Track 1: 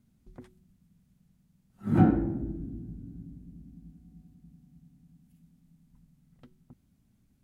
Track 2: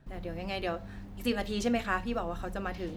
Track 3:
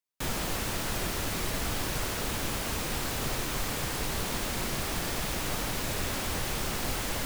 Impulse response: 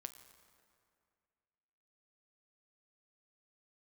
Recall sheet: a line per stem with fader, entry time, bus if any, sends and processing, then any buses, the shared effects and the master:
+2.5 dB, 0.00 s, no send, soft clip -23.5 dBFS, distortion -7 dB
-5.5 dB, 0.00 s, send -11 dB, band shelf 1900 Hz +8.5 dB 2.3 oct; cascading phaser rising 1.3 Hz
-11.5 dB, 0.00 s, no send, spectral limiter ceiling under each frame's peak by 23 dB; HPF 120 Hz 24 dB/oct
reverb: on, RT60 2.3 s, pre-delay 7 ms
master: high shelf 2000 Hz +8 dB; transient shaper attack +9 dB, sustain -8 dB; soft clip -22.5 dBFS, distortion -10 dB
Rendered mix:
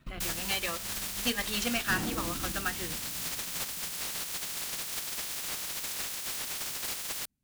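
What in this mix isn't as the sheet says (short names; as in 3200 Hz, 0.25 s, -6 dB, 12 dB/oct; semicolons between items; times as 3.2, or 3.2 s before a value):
stem 1 +2.5 dB -> -6.5 dB; stem 3: missing HPF 120 Hz 24 dB/oct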